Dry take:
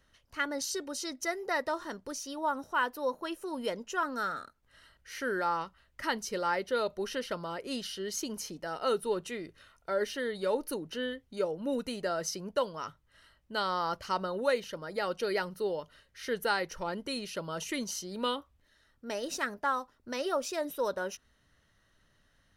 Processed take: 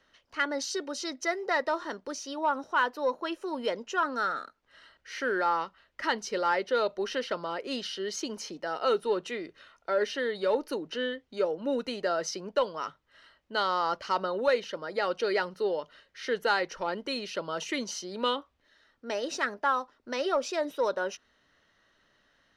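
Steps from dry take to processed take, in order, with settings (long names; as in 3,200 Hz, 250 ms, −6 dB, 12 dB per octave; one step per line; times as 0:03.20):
three-way crossover with the lows and the highs turned down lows −14 dB, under 230 Hz, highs −21 dB, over 6,300 Hz
in parallel at −3.5 dB: soft clipping −24 dBFS, distortion −16 dB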